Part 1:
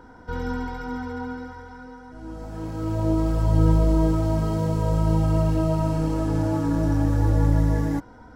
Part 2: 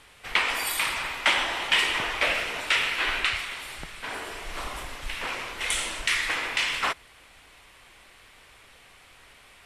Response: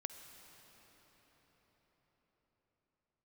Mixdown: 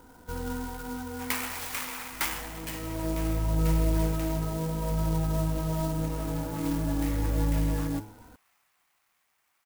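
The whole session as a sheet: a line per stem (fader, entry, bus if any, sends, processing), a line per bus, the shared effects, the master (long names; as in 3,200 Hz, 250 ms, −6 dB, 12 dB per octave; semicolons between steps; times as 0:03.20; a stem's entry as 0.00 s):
−5.5 dB, 0.00 s, no send, hum removal 106.6 Hz, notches 8
0:02.22 −10.5 dB → 0:02.81 −22.5 dB, 0.95 s, send −4.5 dB, Butterworth high-pass 670 Hz 72 dB per octave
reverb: on, RT60 5.8 s, pre-delay 47 ms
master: converter with an unsteady clock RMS 0.071 ms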